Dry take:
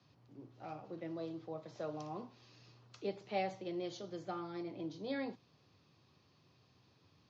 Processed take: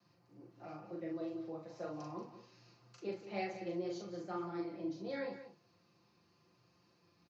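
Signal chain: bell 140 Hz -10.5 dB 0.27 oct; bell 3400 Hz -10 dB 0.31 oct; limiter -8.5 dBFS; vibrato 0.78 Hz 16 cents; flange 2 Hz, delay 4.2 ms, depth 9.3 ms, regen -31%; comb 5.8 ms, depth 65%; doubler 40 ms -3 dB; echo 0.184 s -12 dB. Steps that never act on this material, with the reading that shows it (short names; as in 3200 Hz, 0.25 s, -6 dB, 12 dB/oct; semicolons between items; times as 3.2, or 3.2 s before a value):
limiter -8.5 dBFS: input peak -24.0 dBFS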